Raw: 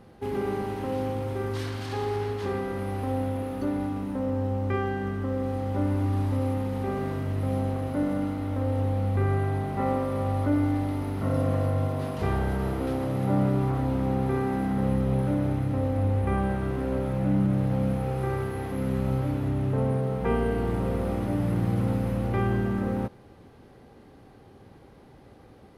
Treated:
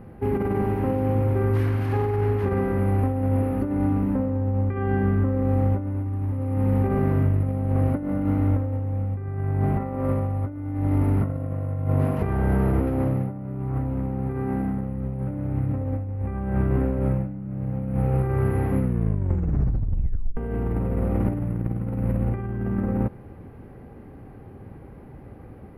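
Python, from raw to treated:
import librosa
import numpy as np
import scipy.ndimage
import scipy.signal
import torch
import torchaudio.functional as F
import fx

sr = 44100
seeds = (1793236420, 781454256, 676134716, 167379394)

y = fx.low_shelf(x, sr, hz=86.0, db=-7.5, at=(12.14, 12.72))
y = fx.edit(y, sr, fx.tape_stop(start_s=18.8, length_s=1.57), tone=tone)
y = fx.band_shelf(y, sr, hz=5300.0, db=-15.0, octaves=1.7)
y = fx.over_compress(y, sr, threshold_db=-29.0, ratio=-0.5)
y = fx.low_shelf(y, sr, hz=270.0, db=9.5)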